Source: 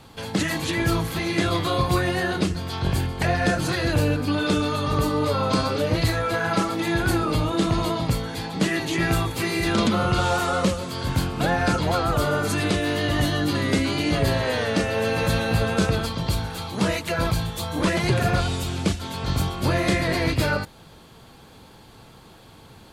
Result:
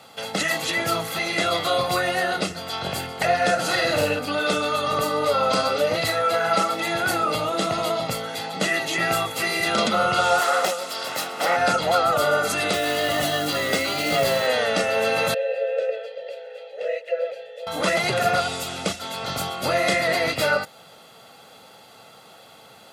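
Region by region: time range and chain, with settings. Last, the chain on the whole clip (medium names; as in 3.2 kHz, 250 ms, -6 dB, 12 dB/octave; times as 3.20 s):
3.54–4.19 s: doubling 50 ms -4 dB + loudspeaker Doppler distortion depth 0.13 ms
10.41–11.57 s: Bessel high-pass 370 Hz + treble shelf 10 kHz +8.5 dB + loudspeaker Doppler distortion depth 0.87 ms
12.73–14.47 s: doubling 13 ms -8.5 dB + short-mantissa float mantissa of 2-bit
15.34–17.67 s: vowel filter e + resonant low shelf 350 Hz -10.5 dB, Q 3
whole clip: high-pass 310 Hz 12 dB/octave; comb 1.5 ms, depth 58%; trim +2 dB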